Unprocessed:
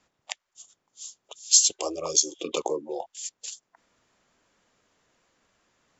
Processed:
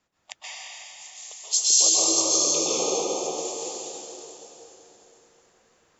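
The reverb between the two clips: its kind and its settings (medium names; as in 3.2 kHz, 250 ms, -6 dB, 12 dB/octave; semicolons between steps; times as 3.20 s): plate-style reverb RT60 3.8 s, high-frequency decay 0.9×, pre-delay 115 ms, DRR -10 dB; trim -6 dB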